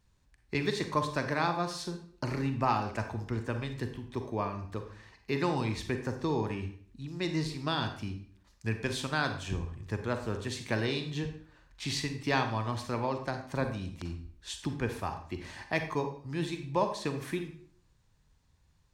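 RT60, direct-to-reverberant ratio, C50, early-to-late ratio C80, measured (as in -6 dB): 0.55 s, 6.5 dB, 8.5 dB, 11.5 dB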